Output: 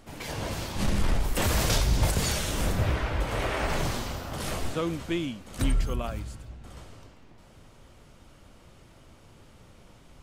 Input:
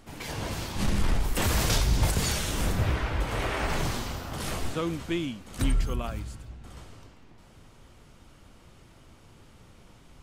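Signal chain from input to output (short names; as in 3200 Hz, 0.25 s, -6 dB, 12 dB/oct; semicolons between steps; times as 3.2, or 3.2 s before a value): bell 580 Hz +3.5 dB 0.46 oct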